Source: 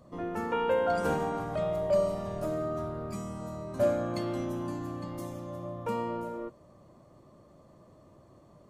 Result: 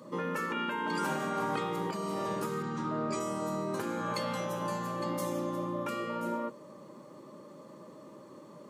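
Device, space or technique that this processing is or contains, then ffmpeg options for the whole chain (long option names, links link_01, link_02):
PA system with an anti-feedback notch: -filter_complex "[0:a]asplit=3[link_01][link_02][link_03];[link_01]afade=type=out:start_time=2.62:duration=0.02[link_04];[link_02]lowpass=frequency=7700:width=0.5412,lowpass=frequency=7700:width=1.3066,afade=type=in:start_time=2.62:duration=0.02,afade=type=out:start_time=3.19:duration=0.02[link_05];[link_03]afade=type=in:start_time=3.19:duration=0.02[link_06];[link_04][link_05][link_06]amix=inputs=3:normalize=0,highpass=frequency=180:width=0.5412,highpass=frequency=180:width=1.3066,asuperstop=centerf=700:order=8:qfactor=4.9,alimiter=level_in=2dB:limit=-24dB:level=0:latency=1:release=233,volume=-2dB,afftfilt=real='re*lt(hypot(re,im),0.0708)':imag='im*lt(hypot(re,im),0.0708)':win_size=1024:overlap=0.75,volume=8.5dB"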